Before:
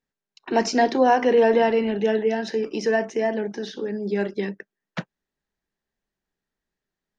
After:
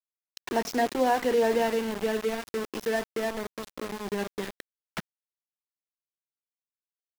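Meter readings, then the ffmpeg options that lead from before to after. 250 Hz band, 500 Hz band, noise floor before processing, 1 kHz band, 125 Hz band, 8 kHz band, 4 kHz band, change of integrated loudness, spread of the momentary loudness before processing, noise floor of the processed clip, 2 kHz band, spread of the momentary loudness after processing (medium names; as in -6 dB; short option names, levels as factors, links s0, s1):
-7.5 dB, -7.0 dB, under -85 dBFS, -6.5 dB, -7.5 dB, no reading, -3.5 dB, -6.5 dB, 16 LU, under -85 dBFS, -5.5 dB, 16 LU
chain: -af "acompressor=mode=upward:threshold=0.0708:ratio=2.5,aeval=exprs='val(0)*gte(abs(val(0)),0.0631)':c=same,volume=0.473"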